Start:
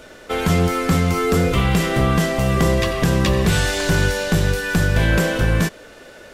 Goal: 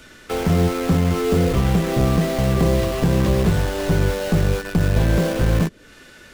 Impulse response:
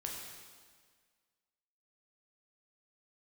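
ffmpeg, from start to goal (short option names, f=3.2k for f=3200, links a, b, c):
-filter_complex "[0:a]acrossover=split=380|950[a][b][c];[b]acrusher=bits=4:mix=0:aa=0.000001[d];[c]acompressor=threshold=-38dB:ratio=6[e];[a][d][e]amix=inputs=3:normalize=0"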